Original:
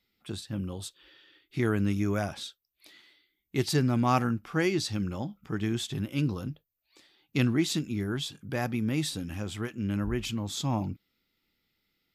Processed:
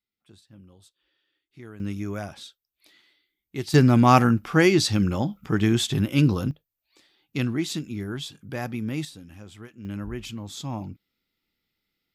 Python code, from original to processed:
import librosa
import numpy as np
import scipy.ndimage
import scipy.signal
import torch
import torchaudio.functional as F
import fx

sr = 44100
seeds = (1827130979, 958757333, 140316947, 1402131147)

y = fx.gain(x, sr, db=fx.steps((0.0, -16.0), (1.8, -3.0), (3.74, 9.0), (6.51, -0.5), (9.05, -9.0), (9.85, -3.0)))